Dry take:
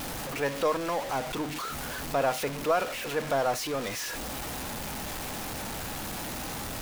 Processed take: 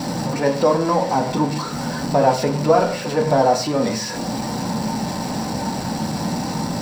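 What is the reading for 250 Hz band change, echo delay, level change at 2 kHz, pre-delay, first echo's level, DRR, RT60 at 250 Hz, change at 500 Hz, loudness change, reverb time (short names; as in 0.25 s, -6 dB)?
+15.5 dB, none, +4.0 dB, 3 ms, none, 2.0 dB, 0.70 s, +11.0 dB, +10.5 dB, 0.40 s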